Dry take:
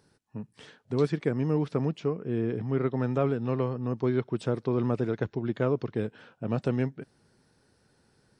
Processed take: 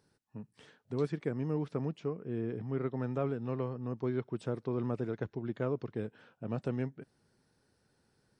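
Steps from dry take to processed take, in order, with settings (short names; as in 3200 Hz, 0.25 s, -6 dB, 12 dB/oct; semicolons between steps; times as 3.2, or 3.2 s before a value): dynamic EQ 4200 Hz, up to -3 dB, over -56 dBFS, Q 0.84; gain -7 dB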